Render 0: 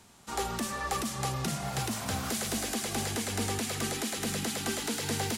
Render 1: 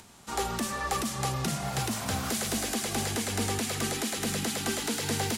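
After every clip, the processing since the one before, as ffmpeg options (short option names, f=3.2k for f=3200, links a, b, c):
-af "acompressor=mode=upward:threshold=-51dB:ratio=2.5,volume=2dB"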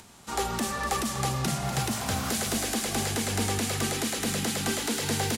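-af "aecho=1:1:245:0.299,volume=1.5dB"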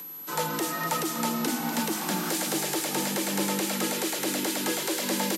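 -af "afreqshift=100,aeval=exprs='val(0)+0.0126*sin(2*PI*12000*n/s)':c=same"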